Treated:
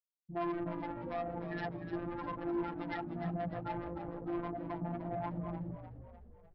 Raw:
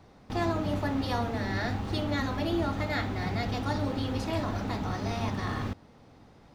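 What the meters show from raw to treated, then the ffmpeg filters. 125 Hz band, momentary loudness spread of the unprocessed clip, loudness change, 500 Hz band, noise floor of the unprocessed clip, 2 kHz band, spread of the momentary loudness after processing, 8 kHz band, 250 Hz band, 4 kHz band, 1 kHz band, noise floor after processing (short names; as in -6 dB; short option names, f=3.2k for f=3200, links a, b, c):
-11.5 dB, 3 LU, -8.5 dB, -6.0 dB, -56 dBFS, -12.0 dB, 7 LU, under -30 dB, -7.5 dB, -20.5 dB, -7.0 dB, -61 dBFS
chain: -filter_complex "[0:a]afwtdn=0.0282,highpass=110,bandreject=f=50:t=h:w=6,bandreject=f=100:t=h:w=6,bandreject=f=150:t=h:w=6,bandreject=f=200:t=h:w=6,bandreject=f=250:t=h:w=6,bandreject=f=300:t=h:w=6,bandreject=f=350:t=h:w=6,bandreject=f=400:t=h:w=6,bandreject=f=450:t=h:w=6,afftfilt=real='re*gte(hypot(re,im),0.0631)':imag='im*gte(hypot(re,im),0.0631)':win_size=1024:overlap=0.75,aecho=1:1:6.8:0.78,alimiter=level_in=0.5dB:limit=-24dB:level=0:latency=1:release=94,volume=-0.5dB,aresample=11025,asoftclip=type=tanh:threshold=-34dB,aresample=44100,afftfilt=real='hypot(re,im)*cos(PI*b)':imag='0':win_size=1024:overlap=0.75,asplit=2[a][b];[b]asplit=6[c][d][e][f][g][h];[c]adelay=301,afreqshift=-52,volume=-10dB[i];[d]adelay=602,afreqshift=-104,volume=-15.5dB[j];[e]adelay=903,afreqshift=-156,volume=-21dB[k];[f]adelay=1204,afreqshift=-208,volume=-26.5dB[l];[g]adelay=1505,afreqshift=-260,volume=-32.1dB[m];[h]adelay=1806,afreqshift=-312,volume=-37.6dB[n];[i][j][k][l][m][n]amix=inputs=6:normalize=0[o];[a][o]amix=inputs=2:normalize=0,volume=3.5dB"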